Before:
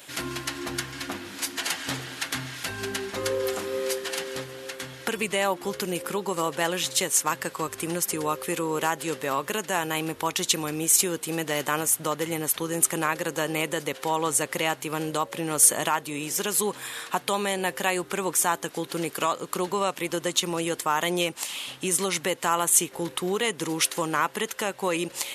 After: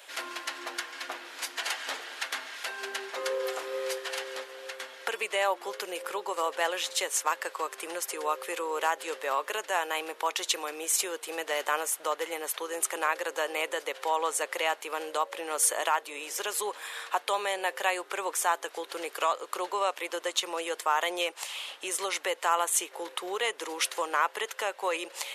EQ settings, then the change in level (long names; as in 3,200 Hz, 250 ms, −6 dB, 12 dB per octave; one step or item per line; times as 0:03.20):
high-pass filter 470 Hz 24 dB per octave
high-shelf EQ 5,500 Hz −9 dB
−1.0 dB